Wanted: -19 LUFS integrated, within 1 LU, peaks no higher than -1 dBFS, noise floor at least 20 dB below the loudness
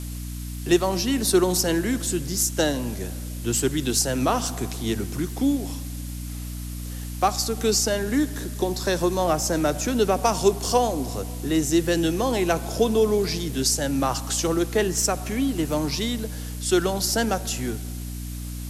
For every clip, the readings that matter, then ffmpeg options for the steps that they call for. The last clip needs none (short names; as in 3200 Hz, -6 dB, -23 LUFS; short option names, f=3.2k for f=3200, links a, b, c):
hum 60 Hz; harmonics up to 300 Hz; hum level -30 dBFS; noise floor -33 dBFS; noise floor target -44 dBFS; loudness -23.5 LUFS; peak -7.5 dBFS; loudness target -19.0 LUFS
-> -af "bandreject=f=60:t=h:w=6,bandreject=f=120:t=h:w=6,bandreject=f=180:t=h:w=6,bandreject=f=240:t=h:w=6,bandreject=f=300:t=h:w=6"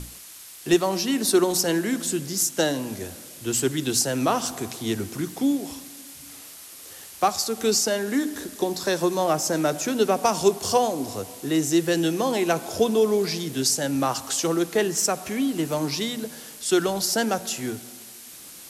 hum none; noise floor -43 dBFS; noise floor target -44 dBFS
-> -af "afftdn=nr=6:nf=-43"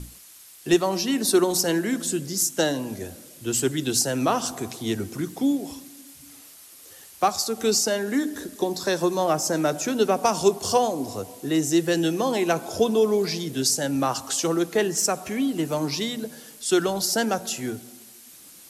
noise floor -48 dBFS; loudness -24.0 LUFS; peak -8.0 dBFS; loudness target -19.0 LUFS
-> -af "volume=5dB"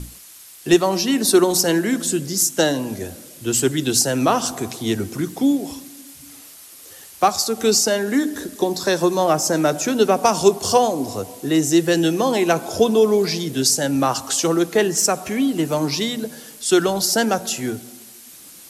loudness -19.0 LUFS; peak -3.0 dBFS; noise floor -43 dBFS